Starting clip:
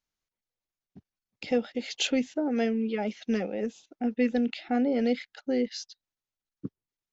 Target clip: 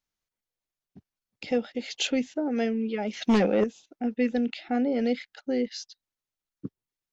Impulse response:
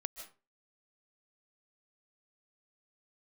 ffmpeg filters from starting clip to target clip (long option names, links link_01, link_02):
-filter_complex "[0:a]asettb=1/sr,asplit=3[link_01][link_02][link_03];[link_01]atrim=end=3.134[link_04];[link_02]atrim=start=3.13:end=3.64,asetpts=PTS-STARTPTS,afade=type=in:duration=0.004:curve=qsin,afade=type=out:start_time=0.506:duration=0.004:curve=qsin,aeval=exprs='0.158*sin(PI/2*2.24*val(0)/0.158)':channel_layout=same[link_05];[link_03]atrim=start=3.636[link_06];[link_04][link_05]acrossfade=duration=0.004:curve1=hsin:curve2=qsin[link_07];[link_07][link_06]acrossfade=duration=0.004:curve1=qsin:curve2=hsin"